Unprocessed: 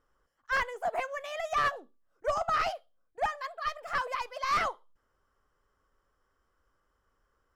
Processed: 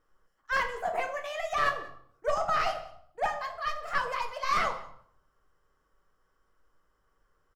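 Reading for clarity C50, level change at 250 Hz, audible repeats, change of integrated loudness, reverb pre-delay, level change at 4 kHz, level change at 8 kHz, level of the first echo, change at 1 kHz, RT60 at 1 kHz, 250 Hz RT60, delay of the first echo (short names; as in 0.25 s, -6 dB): 10.0 dB, +2.5 dB, 1, +1.0 dB, 5 ms, +1.5 dB, +1.0 dB, -22.5 dB, +1.0 dB, 0.65 s, 0.85 s, 0.187 s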